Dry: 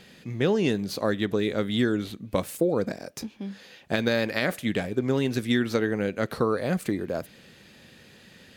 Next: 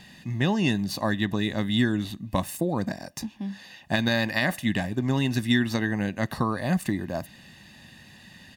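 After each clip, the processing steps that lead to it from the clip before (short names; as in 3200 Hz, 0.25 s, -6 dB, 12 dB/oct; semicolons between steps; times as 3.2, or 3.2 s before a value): comb 1.1 ms, depth 76%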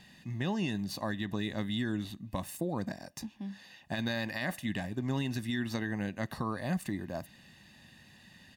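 limiter -15.5 dBFS, peak gain reduction 6.5 dB; gain -7.5 dB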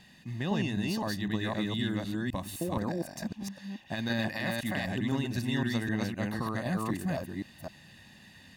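reverse delay 0.256 s, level 0 dB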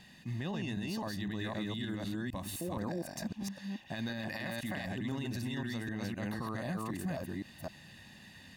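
limiter -29 dBFS, peak gain reduction 11.5 dB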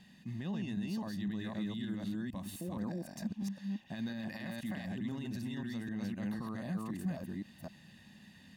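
small resonant body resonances 200/3200 Hz, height 9 dB, ringing for 35 ms; gain -6.5 dB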